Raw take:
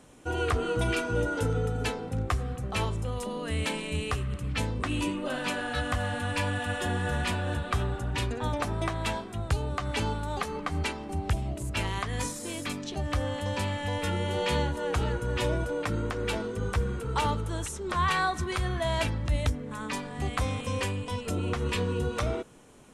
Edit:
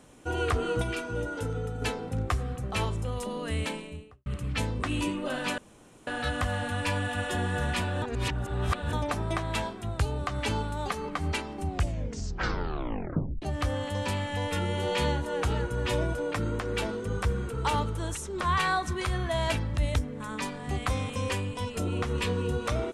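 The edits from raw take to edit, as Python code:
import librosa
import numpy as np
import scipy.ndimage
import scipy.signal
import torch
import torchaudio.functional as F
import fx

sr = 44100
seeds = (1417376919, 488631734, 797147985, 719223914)

y = fx.studio_fade_out(x, sr, start_s=3.49, length_s=0.77)
y = fx.edit(y, sr, fx.clip_gain(start_s=0.82, length_s=1.0, db=-4.5),
    fx.insert_room_tone(at_s=5.58, length_s=0.49),
    fx.reverse_span(start_s=7.53, length_s=0.91),
    fx.tape_stop(start_s=11.16, length_s=1.77), tone=tone)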